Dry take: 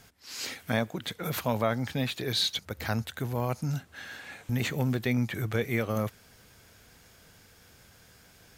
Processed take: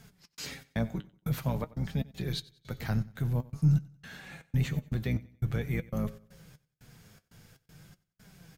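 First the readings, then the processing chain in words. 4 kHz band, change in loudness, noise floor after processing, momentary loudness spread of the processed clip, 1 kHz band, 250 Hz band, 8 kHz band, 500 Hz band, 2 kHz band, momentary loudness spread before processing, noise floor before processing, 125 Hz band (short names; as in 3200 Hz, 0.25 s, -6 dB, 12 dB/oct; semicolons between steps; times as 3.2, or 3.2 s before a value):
-11.5 dB, -2.0 dB, -78 dBFS, 16 LU, -10.0 dB, -2.0 dB, n/a, -8.5 dB, -8.5 dB, 9 LU, -58 dBFS, +2.0 dB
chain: octaver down 2 oct, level -1 dB; bell 150 Hz +15 dB 0.82 oct; in parallel at +0.5 dB: compressor, threshold -34 dBFS, peak gain reduction 19 dB; on the sum: resonator 60 Hz, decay 1.1 s, harmonics odd, mix 50%; step gate "xx.xx.xx..x" 119 bpm -60 dB; flange 0.49 Hz, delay 4.4 ms, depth 5.4 ms, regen +54%; on a send: feedback echo 93 ms, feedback 35%, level -21 dB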